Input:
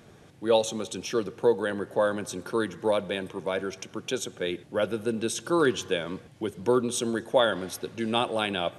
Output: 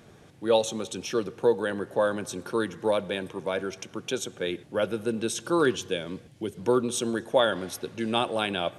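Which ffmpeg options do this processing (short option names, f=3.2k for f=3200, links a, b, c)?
-filter_complex "[0:a]asettb=1/sr,asplit=3[a][b][c];[a]atrim=end=5.764[d];[b]atrim=start=5.76:end=6.57,asetpts=PTS-STARTPTS,afade=t=in:d=0.004:c=qsin,afade=t=out:st=0.806:d=0.004:c=qsin,equalizer=f=1.1k:t=o:w=1.6:g=-7[e];[c]atrim=start=6.566[f];[d][e]acrossfade=d=0.004:c1=hsin:c2=qsin[g];[g][f]acrossfade=d=0.004:c1=qsin:c2=hsin"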